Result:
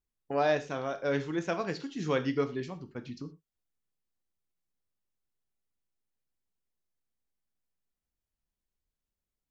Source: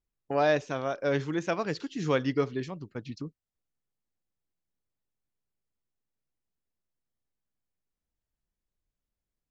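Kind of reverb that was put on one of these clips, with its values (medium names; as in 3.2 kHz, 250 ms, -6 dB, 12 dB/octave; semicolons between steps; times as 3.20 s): gated-style reverb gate 140 ms falling, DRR 8 dB; trim -3 dB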